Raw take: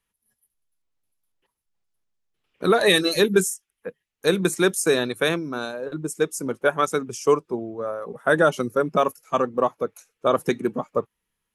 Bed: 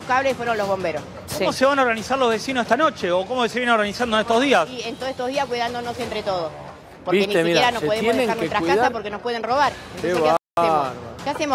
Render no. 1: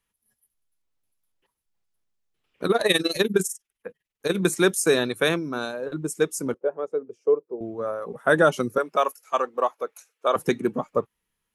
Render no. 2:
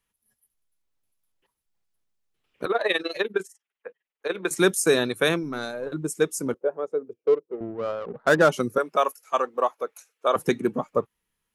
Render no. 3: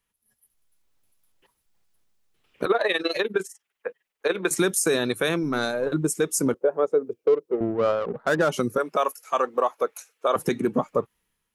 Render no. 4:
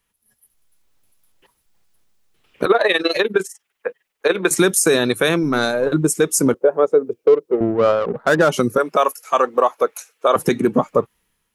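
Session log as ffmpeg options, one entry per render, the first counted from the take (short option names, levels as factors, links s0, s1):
-filter_complex "[0:a]asettb=1/sr,asplit=3[s0][s1][s2];[s0]atrim=end=2.664[s3];[s1]atrim=start=2.66:end=4.36,asetpts=PTS-STARTPTS,afade=t=in:d=0.004:c=qsin,afade=t=out:st=1.696:d=0.004:c=qsin,tremolo=f=20:d=0.824[s4];[s2]atrim=start=4.356[s5];[s3][s4]acrossfade=d=0.004:c1=hsin:c2=qsin[s6];[s6][s5]acrossfade=d=0.004:c1=qsin:c2=hsin,asettb=1/sr,asplit=3[s7][s8][s9];[s7]atrim=end=6.544[s10];[s8]atrim=start=6.54:end=7.61,asetpts=PTS-STARTPTS,afade=t=in:d=0.004:c=qsin,afade=t=out:st=1.066:d=0.004:c=qsin,bandpass=f=470:t=q:w=3.4[s11];[s9]atrim=start=7.606[s12];[s10][s11]acrossfade=d=0.004:c1=hsin:c2=qsin[s13];[s13][s12]acrossfade=d=0.004:c1=qsin:c2=hsin,asettb=1/sr,asplit=3[s14][s15][s16];[s14]atrim=end=8.784[s17];[s15]atrim=start=8.78:end=10.36,asetpts=PTS-STARTPTS,afade=t=in:d=0.004:c=qsin,afade=t=out:st=1.576:d=0.004:c=qsin,highpass=540[s18];[s16]atrim=start=10.356[s19];[s17][s18]acrossfade=d=0.004:c1=hsin:c2=qsin[s20];[s20][s19]acrossfade=d=0.004:c1=qsin:c2=hsin"
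-filter_complex "[0:a]asettb=1/sr,asplit=3[s0][s1][s2];[s0]atrim=end=2.654[s3];[s1]atrim=start=2.65:end=4.51,asetpts=PTS-STARTPTS,afade=t=in:d=0.004:c=qsin,afade=t=out:st=1.856:d=0.004:c=qsin,acrossover=split=370 3500:gain=0.0794 1 0.0891[s4][s5][s6];[s4][s5][s6]amix=inputs=3:normalize=0[s7];[s2]atrim=start=4.506[s8];[s3][s7]acrossfade=d=0.004:c1=hsin:c2=qsin[s9];[s9][s8]acrossfade=d=0.004:c1=qsin:c2=hsin,asettb=1/sr,asplit=3[s10][s11][s12];[s10]atrim=end=5.434[s13];[s11]atrim=start=5.43:end=5.9,asetpts=PTS-STARTPTS,afade=t=in:d=0.004:c=qsin,afade=t=out:st=0.466:d=0.004:c=qsin,aeval=exprs='(tanh(8.91*val(0)+0.25)-tanh(0.25))/8.91':c=same[s14];[s12]atrim=start=5.896[s15];[s13][s14]acrossfade=d=0.004:c1=hsin:c2=qsin[s16];[s16][s15]acrossfade=d=0.004:c1=qsin:c2=hsin,asettb=1/sr,asplit=3[s17][s18][s19];[s17]atrim=end=7.134[s20];[s18]atrim=start=7.13:end=8.49,asetpts=PTS-STARTPTS,afade=t=in:d=0.004:c=qsin,afade=t=out:st=1.356:d=0.004:c=qsin,adynamicsmooth=sensitivity=3:basefreq=680[s21];[s19]atrim=start=8.486[s22];[s20][s21]acrossfade=d=0.004:c1=hsin:c2=qsin[s23];[s23][s22]acrossfade=d=0.004:c1=qsin:c2=hsin"
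-af "dynaudnorm=f=140:g=7:m=2.82,alimiter=limit=0.251:level=0:latency=1:release=113"
-af "volume=2.24"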